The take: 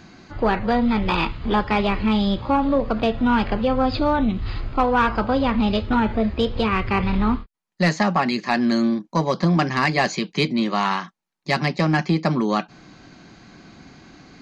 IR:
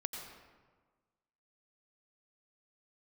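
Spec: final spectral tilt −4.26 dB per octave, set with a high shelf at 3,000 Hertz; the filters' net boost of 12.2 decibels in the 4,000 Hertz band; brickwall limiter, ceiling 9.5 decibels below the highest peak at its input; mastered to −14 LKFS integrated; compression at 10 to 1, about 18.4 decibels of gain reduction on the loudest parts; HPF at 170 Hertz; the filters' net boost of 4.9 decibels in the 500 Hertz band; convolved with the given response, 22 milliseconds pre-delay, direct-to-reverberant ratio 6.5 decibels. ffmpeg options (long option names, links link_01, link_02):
-filter_complex "[0:a]highpass=170,equalizer=frequency=500:width_type=o:gain=5.5,highshelf=frequency=3000:gain=9,equalizer=frequency=4000:width_type=o:gain=8,acompressor=threshold=-30dB:ratio=10,alimiter=limit=-24dB:level=0:latency=1,asplit=2[link_01][link_02];[1:a]atrim=start_sample=2205,adelay=22[link_03];[link_02][link_03]afir=irnorm=-1:irlink=0,volume=-7dB[link_04];[link_01][link_04]amix=inputs=2:normalize=0,volume=20.5dB"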